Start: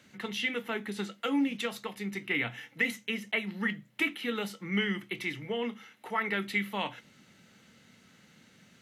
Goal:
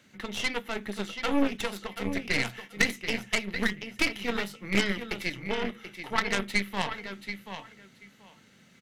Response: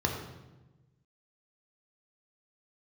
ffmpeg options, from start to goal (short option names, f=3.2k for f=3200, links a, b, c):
-af "aecho=1:1:733|1466|2199:0.422|0.0759|0.0137,aeval=exprs='0.158*(cos(1*acos(clip(val(0)/0.158,-1,1)))-cos(1*PI/2))+0.0447*(cos(3*acos(clip(val(0)/0.158,-1,1)))-cos(3*PI/2))+0.00708*(cos(5*acos(clip(val(0)/0.158,-1,1)))-cos(5*PI/2))+0.02*(cos(6*acos(clip(val(0)/0.158,-1,1)))-cos(6*PI/2))+0.00501*(cos(8*acos(clip(val(0)/0.158,-1,1)))-cos(8*PI/2))':c=same,volume=8dB"